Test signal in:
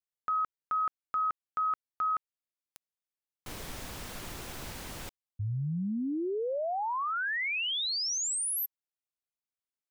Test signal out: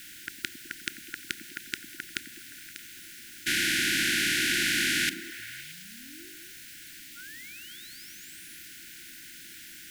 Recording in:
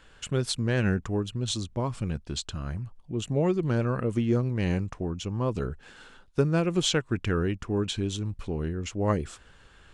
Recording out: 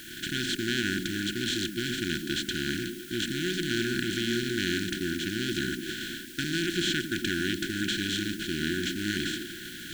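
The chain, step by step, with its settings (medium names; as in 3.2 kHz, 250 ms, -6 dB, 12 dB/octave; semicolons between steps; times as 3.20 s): spectral levelling over time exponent 0.2; gate -21 dBFS, range -14 dB; tone controls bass -14 dB, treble -8 dB; in parallel at -5 dB: word length cut 6-bit, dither triangular; on the sum: brick-wall FIR band-stop 370–1400 Hz; on a send: repeats whose band climbs or falls 104 ms, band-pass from 230 Hz, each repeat 0.7 oct, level -3.5 dB; on the sum: trim -7 dB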